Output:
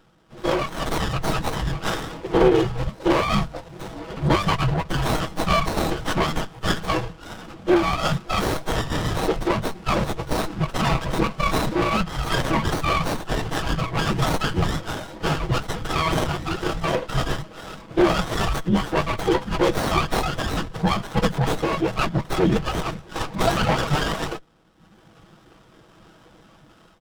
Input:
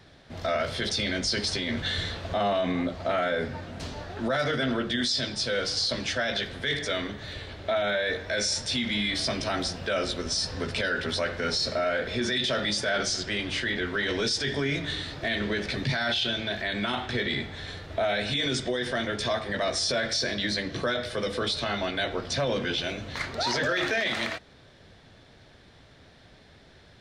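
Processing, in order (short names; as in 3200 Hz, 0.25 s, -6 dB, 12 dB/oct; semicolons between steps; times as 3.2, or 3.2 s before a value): median filter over 3 samples; HPF 290 Hz 24 dB/oct; reverb removal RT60 1.2 s; comb 4.2 ms, depth 80%; AGC gain up to 10 dB; formant-preserving pitch shift -7 st; frequency shift -300 Hz; running maximum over 17 samples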